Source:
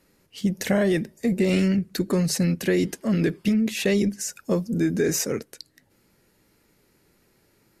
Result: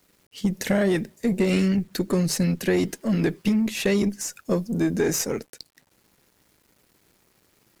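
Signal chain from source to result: added harmonics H 4 -24 dB, 7 -39 dB, 8 -33 dB, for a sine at -9 dBFS; requantised 10-bit, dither none

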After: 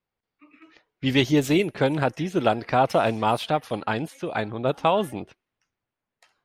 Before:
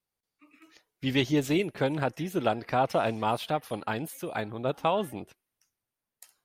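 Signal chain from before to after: low-pass opened by the level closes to 2800 Hz, open at -23.5 dBFS; gain +5.5 dB

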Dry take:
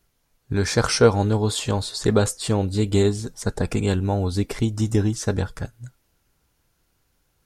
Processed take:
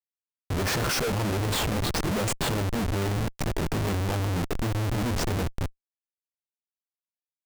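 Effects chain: chorus voices 2, 1 Hz, delay 16 ms, depth 4.5 ms; Schmitt trigger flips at -30 dBFS; record warp 78 rpm, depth 250 cents

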